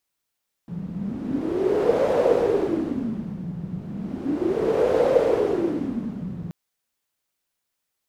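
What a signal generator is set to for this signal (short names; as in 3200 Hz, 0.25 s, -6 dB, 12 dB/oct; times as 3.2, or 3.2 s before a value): wind-like swept noise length 5.83 s, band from 170 Hz, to 510 Hz, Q 7.6, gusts 2, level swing 13.5 dB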